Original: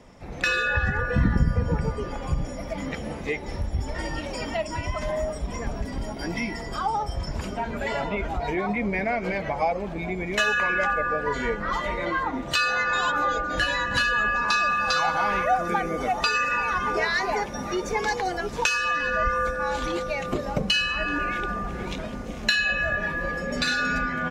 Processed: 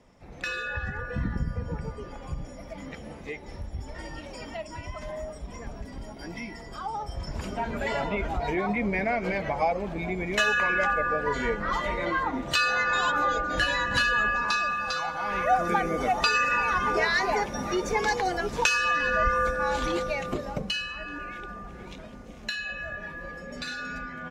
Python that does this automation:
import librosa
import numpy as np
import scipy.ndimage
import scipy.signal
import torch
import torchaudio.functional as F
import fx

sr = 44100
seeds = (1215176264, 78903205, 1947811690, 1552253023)

y = fx.gain(x, sr, db=fx.line((6.78, -8.5), (7.64, -1.0), (14.2, -1.0), (15.17, -8.5), (15.54, 0.0), (20.02, 0.0), (21.01, -10.5)))